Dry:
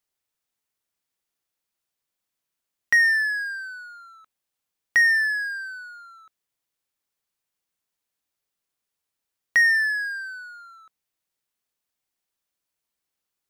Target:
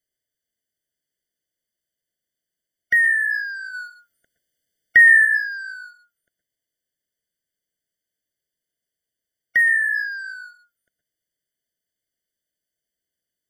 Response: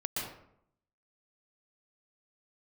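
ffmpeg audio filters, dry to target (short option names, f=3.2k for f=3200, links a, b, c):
-filter_complex "[0:a]asplit=3[a][b][c];[a]afade=t=out:st=3.73:d=0.02[d];[b]acontrast=76,afade=t=in:st=3.73:d=0.02,afade=t=out:st=5.24:d=0.02[e];[c]afade=t=in:st=5.24:d=0.02[f];[d][e][f]amix=inputs=3:normalize=0,asplit=2[g][h];[1:a]atrim=start_sample=2205,afade=t=out:st=0.18:d=0.01,atrim=end_sample=8379[i];[h][i]afir=irnorm=-1:irlink=0,volume=-4.5dB[j];[g][j]amix=inputs=2:normalize=0,afftfilt=real='re*eq(mod(floor(b*sr/1024/720),2),0)':imag='im*eq(mod(floor(b*sr/1024/720),2),0)':win_size=1024:overlap=0.75,volume=-2.5dB"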